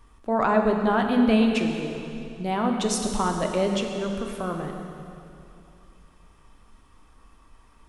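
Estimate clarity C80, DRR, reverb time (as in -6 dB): 5.0 dB, 2.5 dB, 2.7 s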